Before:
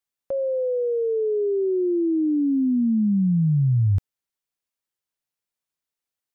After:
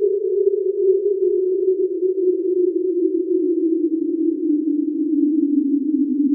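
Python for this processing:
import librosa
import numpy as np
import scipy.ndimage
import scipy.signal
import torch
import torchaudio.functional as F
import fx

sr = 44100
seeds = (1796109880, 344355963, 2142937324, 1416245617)

y = fx.rev_double_slope(x, sr, seeds[0], early_s=0.26, late_s=3.3, knee_db=-22, drr_db=3.0)
y = fx.paulstretch(y, sr, seeds[1], factor=6.1, window_s=1.0, from_s=1.46)
y = y * librosa.db_to_amplitude(2.0)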